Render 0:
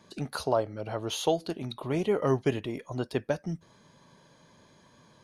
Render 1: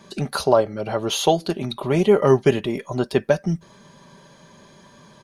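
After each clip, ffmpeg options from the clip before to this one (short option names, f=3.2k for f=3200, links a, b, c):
-af "aecho=1:1:5.1:0.41,volume=9dB"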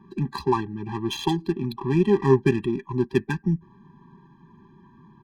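-af "adynamicsmooth=sensitivity=2:basefreq=1.1k,afftfilt=real='re*eq(mod(floor(b*sr/1024/390),2),0)':imag='im*eq(mod(floor(b*sr/1024/390),2),0)':win_size=1024:overlap=0.75"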